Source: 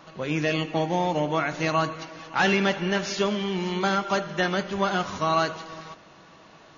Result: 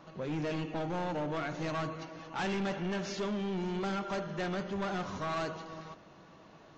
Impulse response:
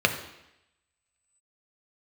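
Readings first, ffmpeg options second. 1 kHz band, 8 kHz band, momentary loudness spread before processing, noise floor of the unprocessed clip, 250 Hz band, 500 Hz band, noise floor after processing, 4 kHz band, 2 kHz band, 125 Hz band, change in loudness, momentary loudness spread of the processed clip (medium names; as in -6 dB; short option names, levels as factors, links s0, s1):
-11.5 dB, no reading, 8 LU, -51 dBFS, -7.5 dB, -9.5 dB, -56 dBFS, -13.0 dB, -13.0 dB, -7.5 dB, -10.5 dB, 8 LU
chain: -af "tiltshelf=f=970:g=4,aresample=16000,asoftclip=type=tanh:threshold=0.0596,aresample=44100,volume=0.501"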